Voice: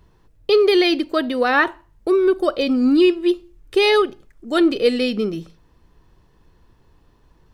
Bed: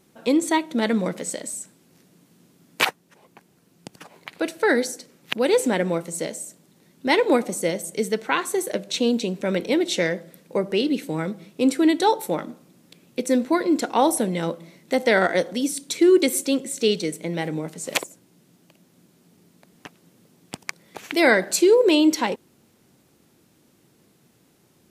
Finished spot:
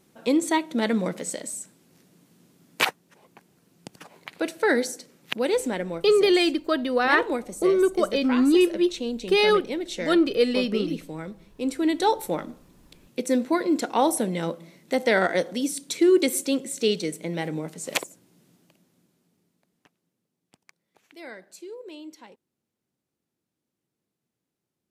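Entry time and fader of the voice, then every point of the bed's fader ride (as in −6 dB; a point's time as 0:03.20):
5.55 s, −4.0 dB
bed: 0:05.22 −2 dB
0:06.04 −9 dB
0:11.59 −9 dB
0:12.06 −2.5 dB
0:18.48 −2.5 dB
0:20.26 −24.5 dB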